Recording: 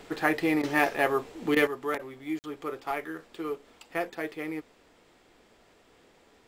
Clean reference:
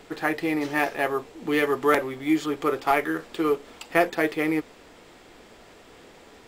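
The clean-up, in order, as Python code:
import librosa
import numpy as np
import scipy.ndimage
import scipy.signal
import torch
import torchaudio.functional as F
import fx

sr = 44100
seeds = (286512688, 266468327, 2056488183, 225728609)

y = fx.fix_interpolate(x, sr, at_s=(2.39,), length_ms=49.0)
y = fx.fix_interpolate(y, sr, at_s=(0.62, 1.55, 1.98), length_ms=12.0)
y = fx.gain(y, sr, db=fx.steps((0.0, 0.0), (1.67, 10.5)))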